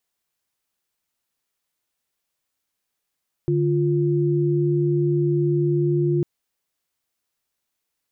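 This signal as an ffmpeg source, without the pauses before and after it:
ffmpeg -f lavfi -i "aevalsrc='0.1*(sin(2*PI*146.83*t)+sin(2*PI*349.23*t))':duration=2.75:sample_rate=44100" out.wav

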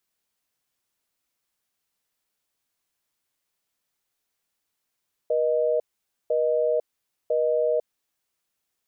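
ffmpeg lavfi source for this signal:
ffmpeg -f lavfi -i "aevalsrc='0.075*(sin(2*PI*480*t)+sin(2*PI*620*t))*clip(min(mod(t,1),0.5-mod(t,1))/0.005,0,1)':duration=2.78:sample_rate=44100" out.wav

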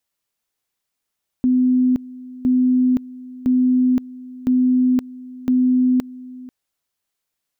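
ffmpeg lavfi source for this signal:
ffmpeg -f lavfi -i "aevalsrc='pow(10,(-12.5-20*gte(mod(t,1.01),0.52))/20)*sin(2*PI*253*t)':duration=5.05:sample_rate=44100" out.wav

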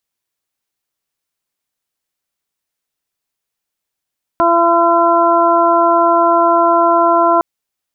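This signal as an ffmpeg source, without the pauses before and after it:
ffmpeg -f lavfi -i "aevalsrc='0.15*sin(2*PI*339*t)+0.237*sin(2*PI*678*t)+0.251*sin(2*PI*1017*t)+0.141*sin(2*PI*1356*t)':duration=3.01:sample_rate=44100" out.wav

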